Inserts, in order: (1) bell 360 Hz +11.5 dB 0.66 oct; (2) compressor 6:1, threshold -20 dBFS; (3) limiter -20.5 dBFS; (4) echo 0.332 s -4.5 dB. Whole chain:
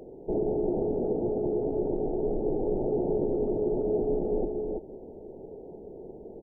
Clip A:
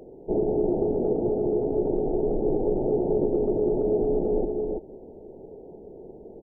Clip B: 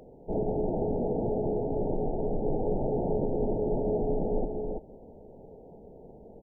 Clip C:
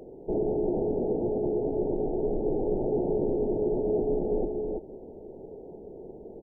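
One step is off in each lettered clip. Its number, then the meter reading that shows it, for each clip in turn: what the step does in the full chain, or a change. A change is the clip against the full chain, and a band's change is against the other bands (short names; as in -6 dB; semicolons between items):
3, mean gain reduction 2.0 dB; 1, momentary loudness spread change +4 LU; 2, mean gain reduction 2.5 dB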